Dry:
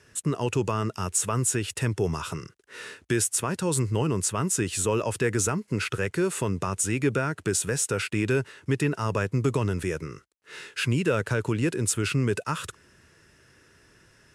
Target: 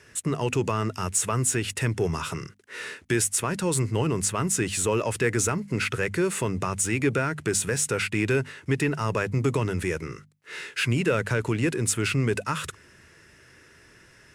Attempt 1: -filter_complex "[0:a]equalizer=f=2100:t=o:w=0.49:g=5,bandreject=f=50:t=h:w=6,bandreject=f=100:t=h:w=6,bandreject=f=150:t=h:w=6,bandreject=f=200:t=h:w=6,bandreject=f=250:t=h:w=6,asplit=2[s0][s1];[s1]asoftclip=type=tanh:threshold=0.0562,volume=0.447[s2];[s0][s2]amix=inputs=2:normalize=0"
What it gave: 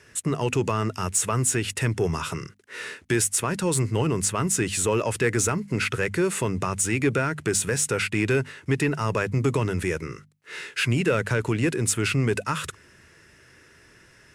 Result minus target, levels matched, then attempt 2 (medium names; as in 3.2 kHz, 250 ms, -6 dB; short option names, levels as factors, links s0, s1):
saturation: distortion -7 dB
-filter_complex "[0:a]equalizer=f=2100:t=o:w=0.49:g=5,bandreject=f=50:t=h:w=6,bandreject=f=100:t=h:w=6,bandreject=f=150:t=h:w=6,bandreject=f=200:t=h:w=6,bandreject=f=250:t=h:w=6,asplit=2[s0][s1];[s1]asoftclip=type=tanh:threshold=0.015,volume=0.447[s2];[s0][s2]amix=inputs=2:normalize=0"